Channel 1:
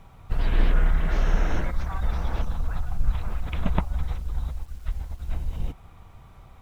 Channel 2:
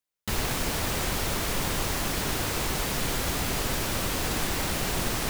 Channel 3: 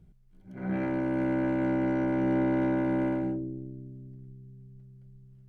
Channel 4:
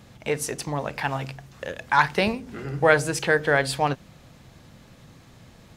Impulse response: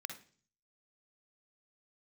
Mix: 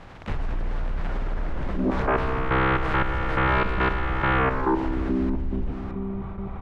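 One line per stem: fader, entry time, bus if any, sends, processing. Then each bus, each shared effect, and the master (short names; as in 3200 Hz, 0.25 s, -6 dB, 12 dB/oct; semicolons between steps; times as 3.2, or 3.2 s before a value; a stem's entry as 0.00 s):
-1.5 dB, 0.00 s, bus A, no send, no echo send, vocal rider within 4 dB 2 s; soft clip -17.5 dBFS, distortion -14 dB
-8.0 dB, 0.00 s, bus A, no send, echo send -15.5 dB, dry
+1.5 dB, 1.30 s, no bus, no send, echo send -23.5 dB, Chebyshev band-pass 200–670 Hz, order 5; sine folder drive 18 dB, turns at -19 dBFS; step gate "....xxx..x" 174 bpm -12 dB
-16.0 dB, 0.00 s, no bus, no send, no echo send, spectral contrast lowered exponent 0.24
bus A: 0.0 dB, gate with hold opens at -38 dBFS; compressor, threshold -28 dBFS, peak gain reduction 8 dB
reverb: off
echo: echo 0.613 s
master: LPF 1700 Hz 12 dB/oct; fast leveller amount 50%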